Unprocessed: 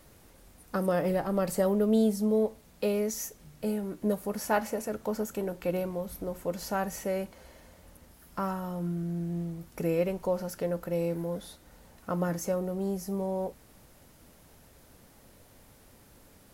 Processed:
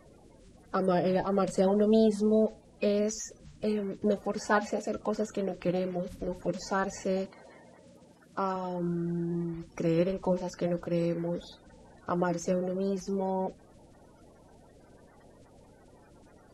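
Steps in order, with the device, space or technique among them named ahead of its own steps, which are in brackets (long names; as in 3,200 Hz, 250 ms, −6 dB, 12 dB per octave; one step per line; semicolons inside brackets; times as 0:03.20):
clip after many re-uploads (low-pass filter 7,300 Hz 24 dB per octave; spectral magnitudes quantised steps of 30 dB)
0:07.25–0:08.56: high-pass filter 130 Hz 12 dB per octave
level +1.5 dB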